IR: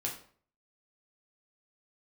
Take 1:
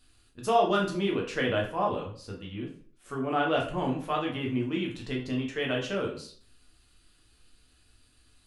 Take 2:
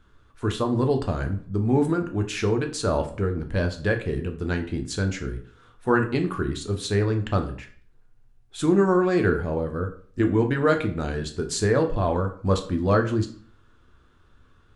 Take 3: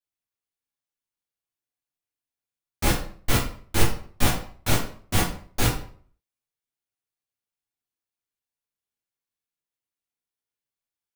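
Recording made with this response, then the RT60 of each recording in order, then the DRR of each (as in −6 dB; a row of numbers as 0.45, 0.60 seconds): 1; 0.50, 0.50, 0.50 seconds; −1.5, 4.5, −7.5 decibels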